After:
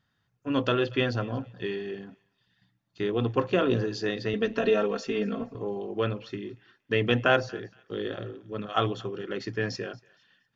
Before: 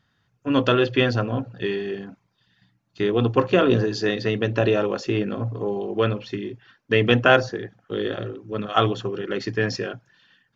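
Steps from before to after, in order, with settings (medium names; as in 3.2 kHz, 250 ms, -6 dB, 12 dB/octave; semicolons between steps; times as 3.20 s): 4.33–5.55 s: comb 4.4 ms, depth 91%; on a send: thinning echo 233 ms, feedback 29%, high-pass 1.1 kHz, level -22.5 dB; on the sum: trim -6.5 dB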